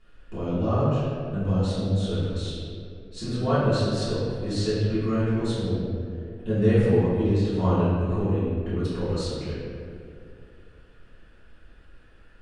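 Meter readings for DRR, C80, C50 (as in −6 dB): −14.5 dB, −1.0 dB, −3.0 dB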